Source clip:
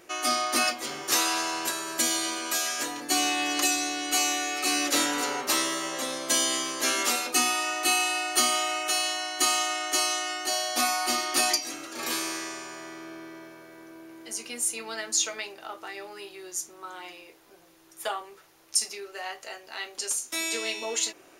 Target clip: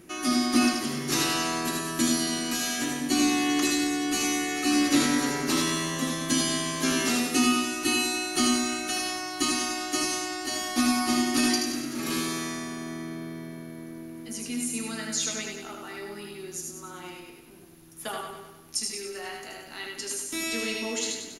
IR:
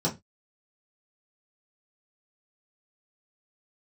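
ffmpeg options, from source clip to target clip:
-filter_complex "[0:a]lowshelf=f=350:t=q:w=1.5:g=14,asplit=2[s0][s1];[s1]aecho=0:1:78:0.596[s2];[s0][s2]amix=inputs=2:normalize=0,acrossover=split=8100[s3][s4];[s4]acompressor=threshold=0.00447:ratio=4:attack=1:release=60[s5];[s3][s5]amix=inputs=2:normalize=0,equalizer=f=11000:w=4.5:g=15,asplit=2[s6][s7];[s7]aecho=0:1:98|196|294|392|490|588|686:0.447|0.241|0.13|0.0703|0.038|0.0205|0.0111[s8];[s6][s8]amix=inputs=2:normalize=0,volume=0.708"

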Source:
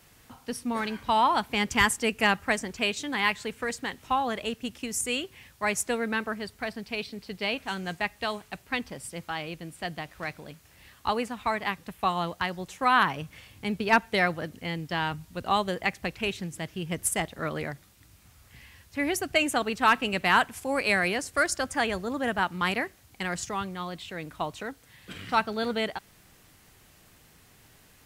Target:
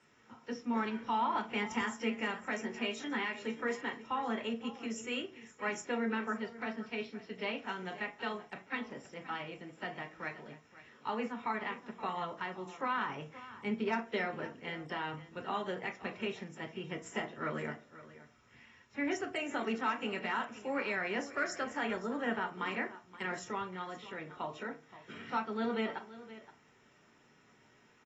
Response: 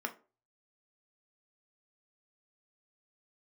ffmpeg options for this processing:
-filter_complex "[0:a]acrossover=split=5300[s0][s1];[s0]alimiter=limit=0.112:level=0:latency=1:release=137[s2];[s2][s1]amix=inputs=2:normalize=0,asettb=1/sr,asplit=3[s3][s4][s5];[s3]atrim=end=2.584[s6];[s4]atrim=start=2.58:end=3.7,asetpts=PTS-STARTPTS,afade=t=in:d=0.004:c=qsin,afade=t=out:st=1.116:d=0.004:c=qsin,asplit=2[s7][s8];[s8]adelay=13,volume=0.355[s9];[s7][s9]amix=inputs=2:normalize=0,atrim=end_sample=49392[s10];[s5]atrim=start=3.696[s11];[s6][s10]acrossfade=d=0.004:c1=hsin:c2=qsin[s12];[s12][s11]acrossfade=d=0.004:c1=qsin:c2=hsin,aecho=1:1:523:0.15[s13];[1:a]atrim=start_sample=2205[s14];[s13][s14]afir=irnorm=-1:irlink=0,volume=0.376" -ar 24000 -c:a aac -b:a 24k

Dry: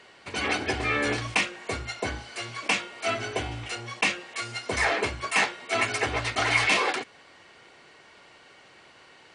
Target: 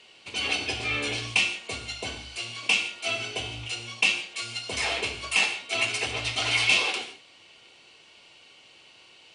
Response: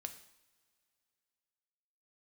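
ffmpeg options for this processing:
-filter_complex "[0:a]highshelf=f=2200:t=q:w=3:g=6[s0];[1:a]atrim=start_sample=2205,atrim=end_sample=3969,asetrate=22491,aresample=44100[s1];[s0][s1]afir=irnorm=-1:irlink=0,volume=0.531"

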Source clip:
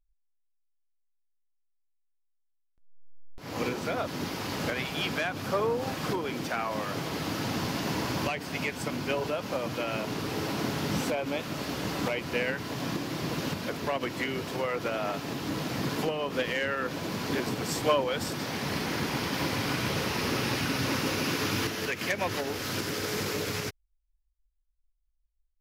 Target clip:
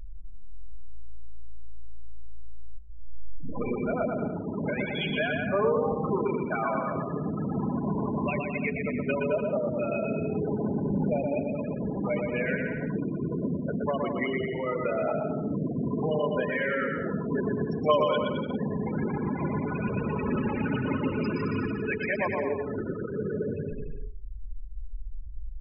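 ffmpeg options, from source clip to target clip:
-filter_complex "[0:a]aeval=exprs='val(0)+0.5*0.0316*sgn(val(0))':c=same,asplit=2[s0][s1];[s1]asplit=4[s2][s3][s4][s5];[s2]adelay=487,afreqshift=-55,volume=0.237[s6];[s3]adelay=974,afreqshift=-110,volume=0.107[s7];[s4]adelay=1461,afreqshift=-165,volume=0.0479[s8];[s5]adelay=1948,afreqshift=-220,volume=0.0216[s9];[s6][s7][s8][s9]amix=inputs=4:normalize=0[s10];[s0][s10]amix=inputs=2:normalize=0,afftfilt=real='re*gte(hypot(re,im),0.112)':imag='im*gte(hypot(re,im),0.112)':win_size=1024:overlap=0.75,bandreject=f=60:t=h:w=6,bandreject=f=120:t=h:w=6,bandreject=f=180:t=h:w=6,bandreject=f=240:t=h:w=6,bandreject=f=300:t=h:w=6,bandreject=f=360:t=h:w=6,bandreject=f=420:t=h:w=6,bandreject=f=480:t=h:w=6,aecho=1:1:4.8:0.41,asplit=2[s11][s12];[s12]aecho=0:1:120|216|292.8|354.2|403.4:0.631|0.398|0.251|0.158|0.1[s13];[s11][s13]amix=inputs=2:normalize=0,volume=0.891"

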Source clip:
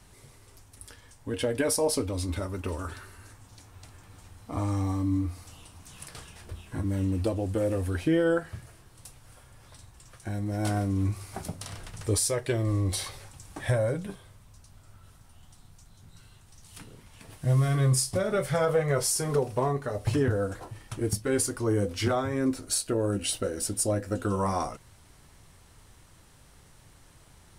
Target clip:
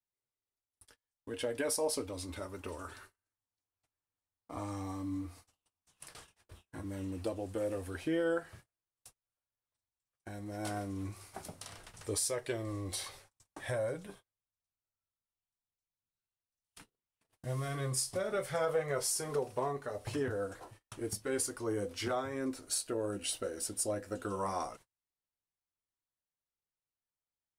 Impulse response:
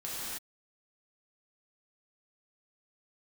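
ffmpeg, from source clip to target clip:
-af "bass=f=250:g=-9,treble=f=4000:g=0,agate=range=0.0158:threshold=0.00447:ratio=16:detection=peak,volume=0.473"

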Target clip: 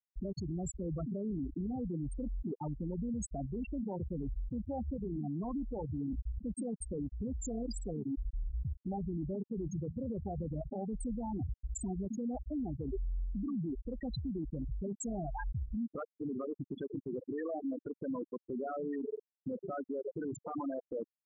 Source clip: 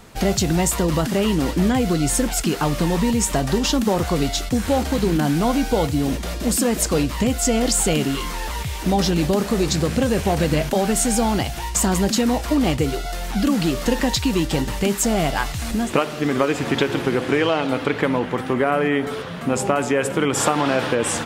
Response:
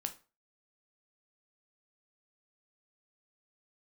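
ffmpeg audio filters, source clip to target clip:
-af "afftfilt=real='re*gte(hypot(re,im),0.447)':imag='im*gte(hypot(re,im),0.447)':win_size=1024:overlap=0.75,adynamicequalizer=threshold=0.02:dfrequency=550:dqfactor=1.3:tfrequency=550:tqfactor=1.3:attack=5:release=100:ratio=0.375:range=2.5:mode=cutabove:tftype=bell,areverse,acompressor=threshold=0.0398:ratio=12,areverse,alimiter=level_in=2.51:limit=0.0631:level=0:latency=1:release=100,volume=0.398,volume=1.12"

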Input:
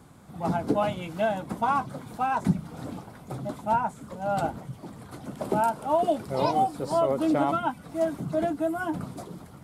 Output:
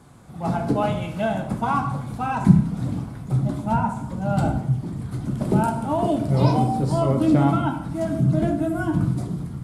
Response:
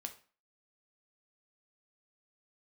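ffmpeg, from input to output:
-filter_complex "[0:a]asubboost=boost=5.5:cutoff=240[s0];[1:a]atrim=start_sample=2205,asetrate=22491,aresample=44100[s1];[s0][s1]afir=irnorm=-1:irlink=0,volume=1.26"

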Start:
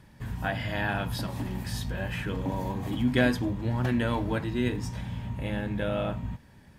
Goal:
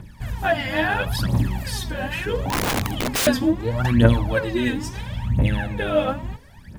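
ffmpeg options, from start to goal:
-filter_complex "[0:a]aphaser=in_gain=1:out_gain=1:delay=3.9:decay=0.78:speed=0.74:type=triangular,asettb=1/sr,asplit=3[s0][s1][s2];[s0]atrim=end=2.504[s3];[s1]atrim=start=2.5:end=3.27,asetpts=PTS-STARTPTS,afade=t=in:d=0.004:c=qsin,afade=t=out:st=0.766:d=0.004:c=qsin,aeval=exprs='(mod(11.9*val(0)+1,2)-1)/11.9':c=same[s4];[s2]atrim=start=3.266[s5];[s3][s4]acrossfade=d=0.004:c1=hsin:c2=qsin[s6];[s6][s5]acrossfade=d=0.004:c1=qsin:c2=hsin,bandreject=f=137.8:t=h:w=4,bandreject=f=275.6:t=h:w=4,bandreject=f=413.4:t=h:w=4,bandreject=f=551.2:t=h:w=4,bandreject=f=689:t=h:w=4,bandreject=f=826.8:t=h:w=4,bandreject=f=964.6:t=h:w=4,bandreject=f=1102.4:t=h:w=4,volume=1.68"

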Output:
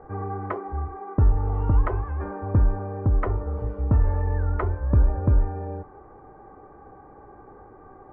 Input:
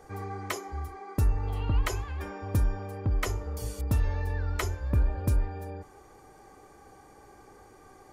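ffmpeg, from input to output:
-af "lowpass=f=1400:w=0.5412,lowpass=f=1400:w=1.3066,volume=2.11"

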